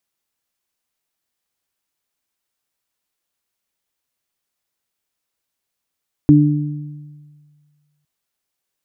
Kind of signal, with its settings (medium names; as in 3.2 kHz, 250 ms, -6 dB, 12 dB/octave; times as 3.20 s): additive tone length 1.76 s, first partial 148 Hz, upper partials 3.5 dB, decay 1.77 s, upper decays 1.06 s, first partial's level -9 dB